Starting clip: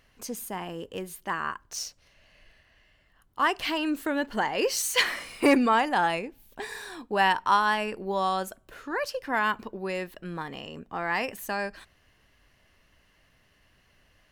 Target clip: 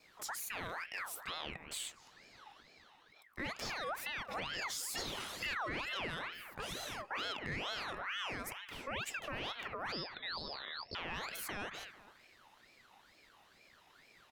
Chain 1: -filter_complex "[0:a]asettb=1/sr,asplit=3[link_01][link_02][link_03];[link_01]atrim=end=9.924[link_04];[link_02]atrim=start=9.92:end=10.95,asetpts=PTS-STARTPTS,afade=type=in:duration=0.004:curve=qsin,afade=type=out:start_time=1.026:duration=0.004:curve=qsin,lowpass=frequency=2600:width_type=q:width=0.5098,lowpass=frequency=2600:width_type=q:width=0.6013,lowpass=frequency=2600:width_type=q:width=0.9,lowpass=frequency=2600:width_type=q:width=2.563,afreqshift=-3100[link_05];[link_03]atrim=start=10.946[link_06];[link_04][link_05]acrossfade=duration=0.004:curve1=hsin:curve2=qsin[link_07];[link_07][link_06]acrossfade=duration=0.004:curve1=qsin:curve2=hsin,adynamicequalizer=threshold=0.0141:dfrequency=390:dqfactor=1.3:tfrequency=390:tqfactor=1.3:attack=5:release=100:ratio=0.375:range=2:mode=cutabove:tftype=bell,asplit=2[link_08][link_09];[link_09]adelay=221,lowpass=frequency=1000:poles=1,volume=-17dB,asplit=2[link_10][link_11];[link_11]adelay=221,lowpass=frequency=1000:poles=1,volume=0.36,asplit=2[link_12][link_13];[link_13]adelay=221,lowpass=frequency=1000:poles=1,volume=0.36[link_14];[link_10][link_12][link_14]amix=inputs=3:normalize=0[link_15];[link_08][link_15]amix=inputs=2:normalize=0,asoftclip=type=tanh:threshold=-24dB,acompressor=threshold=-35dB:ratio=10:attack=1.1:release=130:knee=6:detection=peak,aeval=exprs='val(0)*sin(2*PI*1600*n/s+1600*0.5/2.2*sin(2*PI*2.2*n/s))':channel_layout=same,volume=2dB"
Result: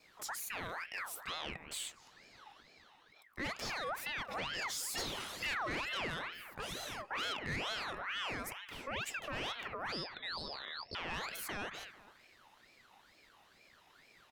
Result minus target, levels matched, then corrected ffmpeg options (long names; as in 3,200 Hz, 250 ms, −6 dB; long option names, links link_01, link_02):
soft clipping: distortion +9 dB
-filter_complex "[0:a]asettb=1/sr,asplit=3[link_01][link_02][link_03];[link_01]atrim=end=9.924[link_04];[link_02]atrim=start=9.92:end=10.95,asetpts=PTS-STARTPTS,afade=type=in:duration=0.004:curve=qsin,afade=type=out:start_time=1.026:duration=0.004:curve=qsin,lowpass=frequency=2600:width_type=q:width=0.5098,lowpass=frequency=2600:width_type=q:width=0.6013,lowpass=frequency=2600:width_type=q:width=0.9,lowpass=frequency=2600:width_type=q:width=2.563,afreqshift=-3100[link_05];[link_03]atrim=start=10.946[link_06];[link_04][link_05]acrossfade=duration=0.004:curve1=hsin:curve2=qsin[link_07];[link_07][link_06]acrossfade=duration=0.004:curve1=qsin:curve2=hsin,adynamicequalizer=threshold=0.0141:dfrequency=390:dqfactor=1.3:tfrequency=390:tqfactor=1.3:attack=5:release=100:ratio=0.375:range=2:mode=cutabove:tftype=bell,asplit=2[link_08][link_09];[link_09]adelay=221,lowpass=frequency=1000:poles=1,volume=-17dB,asplit=2[link_10][link_11];[link_11]adelay=221,lowpass=frequency=1000:poles=1,volume=0.36,asplit=2[link_12][link_13];[link_13]adelay=221,lowpass=frequency=1000:poles=1,volume=0.36[link_14];[link_10][link_12][link_14]amix=inputs=3:normalize=0[link_15];[link_08][link_15]amix=inputs=2:normalize=0,asoftclip=type=tanh:threshold=-15dB,acompressor=threshold=-35dB:ratio=10:attack=1.1:release=130:knee=6:detection=peak,aeval=exprs='val(0)*sin(2*PI*1600*n/s+1600*0.5/2.2*sin(2*PI*2.2*n/s))':channel_layout=same,volume=2dB"